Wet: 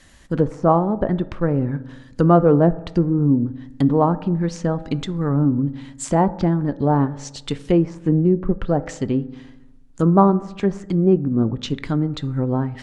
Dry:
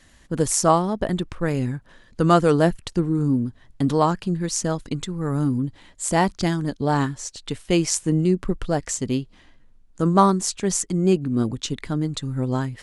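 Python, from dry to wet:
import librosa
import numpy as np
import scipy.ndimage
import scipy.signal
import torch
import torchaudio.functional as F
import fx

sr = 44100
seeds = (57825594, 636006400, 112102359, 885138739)

y = fx.env_lowpass_down(x, sr, base_hz=920.0, full_db=-18.0)
y = fx.rev_fdn(y, sr, rt60_s=0.99, lf_ratio=1.2, hf_ratio=0.35, size_ms=11.0, drr_db=14.0)
y = y * librosa.db_to_amplitude(3.5)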